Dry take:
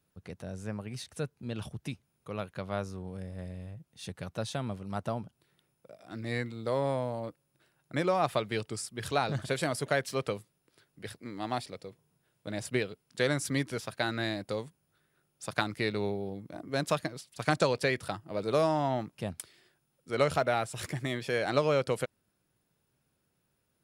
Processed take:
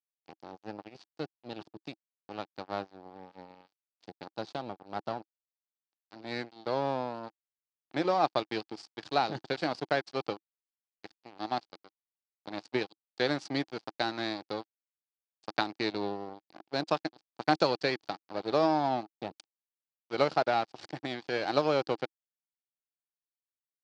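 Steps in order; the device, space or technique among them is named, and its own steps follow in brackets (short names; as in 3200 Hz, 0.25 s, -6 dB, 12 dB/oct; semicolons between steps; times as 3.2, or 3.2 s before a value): blown loudspeaker (crossover distortion -37 dBFS; speaker cabinet 170–5600 Hz, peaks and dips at 320 Hz +7 dB, 800 Hz +8 dB, 2000 Hz -3 dB, 4600 Hz +8 dB)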